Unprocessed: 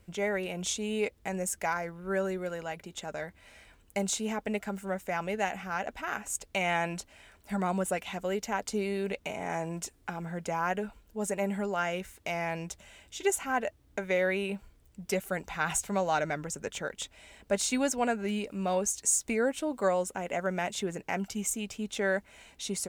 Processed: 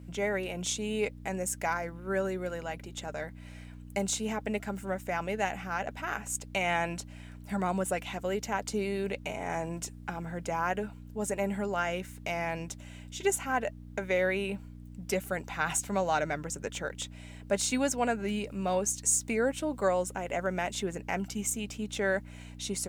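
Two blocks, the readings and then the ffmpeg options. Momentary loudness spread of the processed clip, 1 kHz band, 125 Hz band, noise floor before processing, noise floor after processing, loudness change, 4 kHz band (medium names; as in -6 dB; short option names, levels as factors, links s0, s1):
10 LU, 0.0 dB, +1.0 dB, -62 dBFS, -47 dBFS, 0.0 dB, 0.0 dB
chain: -af "aeval=exprs='val(0)+0.00794*(sin(2*PI*60*n/s)+sin(2*PI*2*60*n/s)/2+sin(2*PI*3*60*n/s)/3+sin(2*PI*4*60*n/s)/4+sin(2*PI*5*60*n/s)/5)':c=same,highpass=f=79:p=1"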